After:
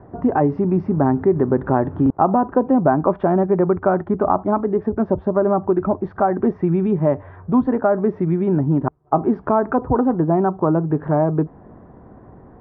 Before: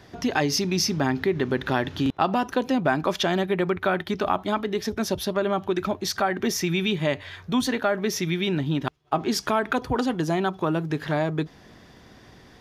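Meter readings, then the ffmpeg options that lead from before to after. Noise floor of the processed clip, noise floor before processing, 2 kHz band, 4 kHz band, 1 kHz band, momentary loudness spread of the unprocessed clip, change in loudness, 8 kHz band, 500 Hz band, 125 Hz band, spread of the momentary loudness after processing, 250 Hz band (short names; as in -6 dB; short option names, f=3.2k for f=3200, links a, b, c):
-45 dBFS, -51 dBFS, -6.5 dB, under -30 dB, +6.0 dB, 4 LU, +6.0 dB, under -40 dB, +7.5 dB, +7.5 dB, 4 LU, +7.5 dB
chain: -af "lowpass=f=1.1k:w=0.5412,lowpass=f=1.1k:w=1.3066,volume=7.5dB"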